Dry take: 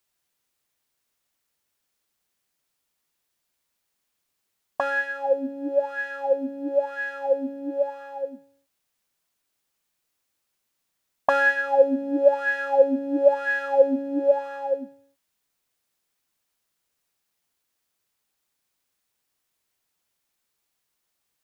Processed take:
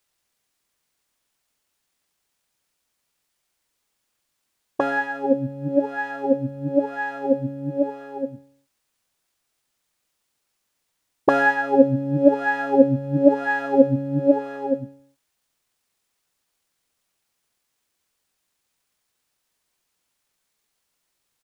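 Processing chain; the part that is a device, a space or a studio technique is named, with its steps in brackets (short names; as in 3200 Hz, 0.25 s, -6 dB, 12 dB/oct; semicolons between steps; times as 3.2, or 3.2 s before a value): octave pedal (harmoniser -12 st -1 dB)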